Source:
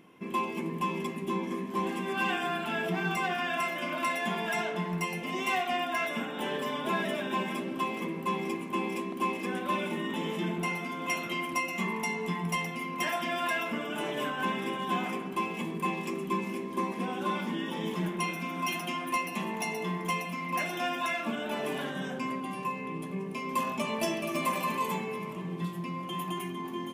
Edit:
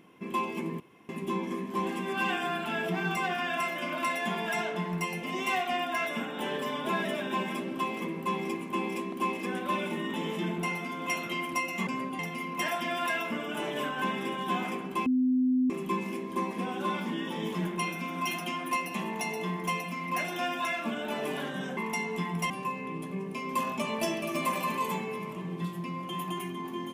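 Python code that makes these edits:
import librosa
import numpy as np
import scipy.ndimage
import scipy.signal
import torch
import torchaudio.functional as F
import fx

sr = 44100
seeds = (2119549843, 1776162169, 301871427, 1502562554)

y = fx.edit(x, sr, fx.room_tone_fill(start_s=0.8, length_s=0.29),
    fx.swap(start_s=11.87, length_s=0.73, other_s=22.18, other_length_s=0.32),
    fx.bleep(start_s=15.47, length_s=0.64, hz=255.0, db=-22.0), tone=tone)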